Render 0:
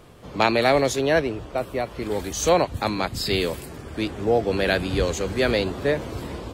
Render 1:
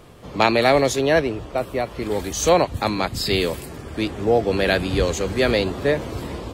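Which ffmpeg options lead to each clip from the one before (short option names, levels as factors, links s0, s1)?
-af "bandreject=f=1500:w=29,volume=1.33"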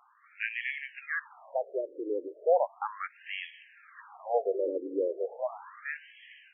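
-filter_complex "[0:a]acrossover=split=2800[s0][s1];[s1]acompressor=threshold=0.0251:ratio=4:attack=1:release=60[s2];[s0][s2]amix=inputs=2:normalize=0,afftfilt=real='re*between(b*sr/1024,390*pow(2400/390,0.5+0.5*sin(2*PI*0.36*pts/sr))/1.41,390*pow(2400/390,0.5+0.5*sin(2*PI*0.36*pts/sr))*1.41)':imag='im*between(b*sr/1024,390*pow(2400/390,0.5+0.5*sin(2*PI*0.36*pts/sr))/1.41,390*pow(2400/390,0.5+0.5*sin(2*PI*0.36*pts/sr))*1.41)':win_size=1024:overlap=0.75,volume=0.447"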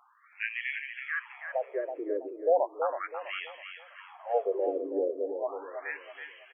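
-af "aecho=1:1:326|652|978|1304:0.422|0.143|0.0487|0.0166"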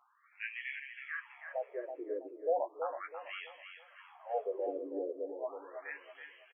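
-filter_complex "[0:a]asplit=2[s0][s1];[s1]adelay=14,volume=0.447[s2];[s0][s2]amix=inputs=2:normalize=0,volume=0.398"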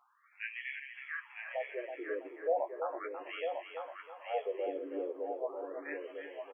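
-af "aecho=1:1:951:0.531"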